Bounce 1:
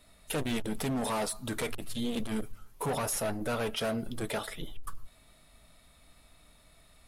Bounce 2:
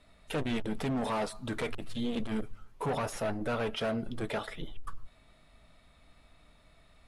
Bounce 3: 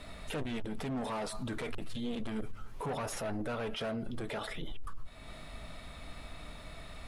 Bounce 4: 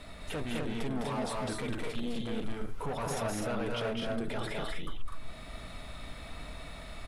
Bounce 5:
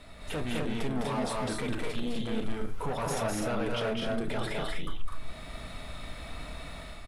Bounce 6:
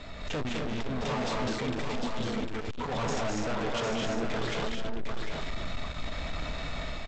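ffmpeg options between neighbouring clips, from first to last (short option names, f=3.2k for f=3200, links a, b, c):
-af "lowpass=8.6k,bass=f=250:g=0,treble=f=4k:g=-8"
-af "acompressor=threshold=-49dB:ratio=2,alimiter=level_in=21dB:limit=-24dB:level=0:latency=1:release=43,volume=-21dB,volume=14dB"
-af "aecho=1:1:207|250.7:0.708|0.708"
-filter_complex "[0:a]dynaudnorm=f=100:g=5:m=5.5dB,asplit=2[a][b];[b]adelay=32,volume=-12dB[c];[a][c]amix=inputs=2:normalize=0,volume=-3dB"
-af "aresample=16000,asoftclip=type=tanh:threshold=-37dB,aresample=44100,aecho=1:1:753:0.562,volume=7.5dB"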